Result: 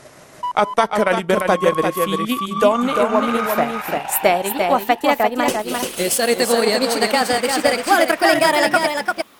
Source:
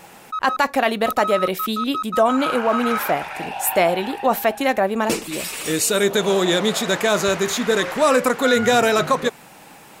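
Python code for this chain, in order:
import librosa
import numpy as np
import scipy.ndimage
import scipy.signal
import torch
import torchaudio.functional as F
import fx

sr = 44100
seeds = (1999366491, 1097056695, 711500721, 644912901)

y = fx.speed_glide(x, sr, from_pct=74, to_pct=139)
y = y + 10.0 ** (-4.0 / 20.0) * np.pad(y, (int(345 * sr / 1000.0), 0))[:len(y)]
y = fx.transient(y, sr, attack_db=4, sustain_db=-6)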